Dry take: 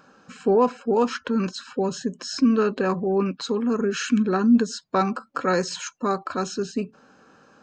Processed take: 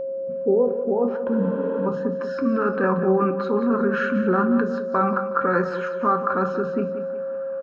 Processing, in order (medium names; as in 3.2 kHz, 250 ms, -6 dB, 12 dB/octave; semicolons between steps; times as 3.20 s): low-pass sweep 420 Hz -> 1.4 kHz, 0.36–2.21 s; spectral replace 1.34–1.84 s, 240–7600 Hz before; in parallel at -1 dB: compressor with a negative ratio -21 dBFS, ratio -0.5; on the sum: feedback delay 183 ms, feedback 42%, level -11.5 dB; on a send at -7 dB: reverberation RT60 0.55 s, pre-delay 3 ms; on the sum: whistle 540 Hz -19 dBFS; endings held to a fixed fall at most 140 dB/s; trim -6.5 dB